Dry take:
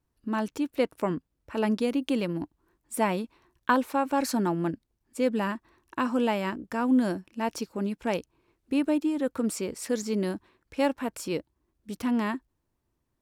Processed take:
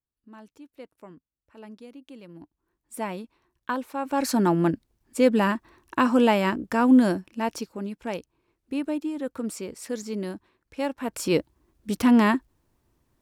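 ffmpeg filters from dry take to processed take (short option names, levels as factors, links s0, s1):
-af "volume=8.41,afade=t=in:st=2.21:d=0.73:silence=0.237137,afade=t=in:st=3.95:d=0.6:silence=0.251189,afade=t=out:st=6.9:d=0.92:silence=0.334965,afade=t=in:st=10.97:d=0.42:silence=0.251189"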